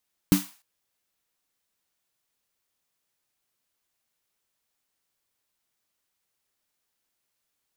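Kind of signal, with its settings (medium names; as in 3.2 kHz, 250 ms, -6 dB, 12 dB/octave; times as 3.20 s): snare drum length 0.30 s, tones 190 Hz, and 290 Hz, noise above 730 Hz, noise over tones -11 dB, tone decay 0.19 s, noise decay 0.40 s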